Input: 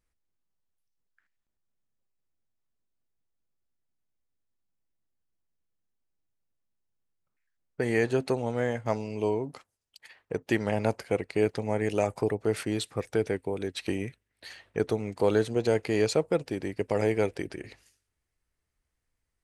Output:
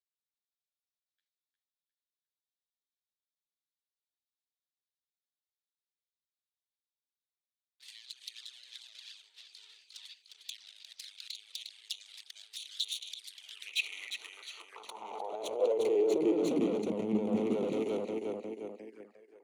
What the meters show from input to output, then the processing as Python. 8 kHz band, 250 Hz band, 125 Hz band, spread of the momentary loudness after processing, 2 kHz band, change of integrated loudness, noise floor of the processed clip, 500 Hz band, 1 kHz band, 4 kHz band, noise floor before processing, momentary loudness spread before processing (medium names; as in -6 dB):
-4.0 dB, -4.5 dB, -16.5 dB, 21 LU, -9.5 dB, -5.0 dB, under -85 dBFS, -6.5 dB, -9.0 dB, +2.5 dB, -83 dBFS, 12 LU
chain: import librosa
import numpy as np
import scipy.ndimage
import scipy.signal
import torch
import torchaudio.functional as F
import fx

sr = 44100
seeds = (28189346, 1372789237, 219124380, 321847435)

p1 = scipy.signal.sosfilt(scipy.signal.butter(2, 41.0, 'highpass', fs=sr, output='sos'), x)
p2 = fx.low_shelf(p1, sr, hz=67.0, db=-3.0)
p3 = fx.hum_notches(p2, sr, base_hz=50, count=5)
p4 = fx.level_steps(p3, sr, step_db=14)
p5 = p4 + fx.echo_split(p4, sr, split_hz=310.0, low_ms=105, high_ms=355, feedback_pct=52, wet_db=-4.5, dry=0)
p6 = fx.over_compress(p5, sr, threshold_db=-37.0, ratio=-1.0)
p7 = fx.tube_stage(p6, sr, drive_db=40.0, bias=0.55)
p8 = fx.filter_sweep_highpass(p7, sr, from_hz=3700.0, to_hz=220.0, start_s=13.28, end_s=16.75, q=4.8)
p9 = fx.env_flanger(p8, sr, rest_ms=11.1, full_db=-46.0)
p10 = fx.band_widen(p9, sr, depth_pct=40)
y = p10 * librosa.db_to_amplitude(8.0)